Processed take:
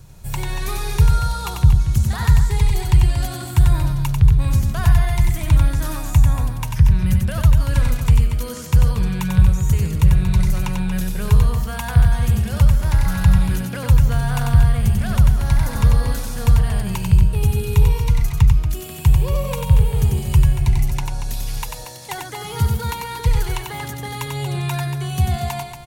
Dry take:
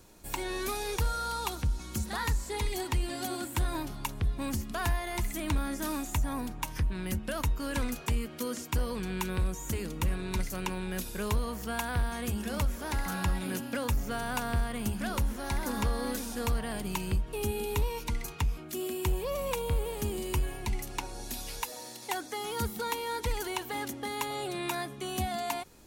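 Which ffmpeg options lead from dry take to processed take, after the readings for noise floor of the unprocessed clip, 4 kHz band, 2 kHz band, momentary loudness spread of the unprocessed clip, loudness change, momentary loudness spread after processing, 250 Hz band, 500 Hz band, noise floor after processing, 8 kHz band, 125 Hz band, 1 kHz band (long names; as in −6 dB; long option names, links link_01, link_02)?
−44 dBFS, +6.5 dB, +6.5 dB, 4 LU, +15.0 dB, 10 LU, +9.5 dB, +3.5 dB, −32 dBFS, +6.5 dB, +19.5 dB, +6.0 dB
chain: -af "lowshelf=frequency=190:width_type=q:width=3:gain=10.5,aecho=1:1:93.29|233.2:0.631|0.355,volume=4.5dB"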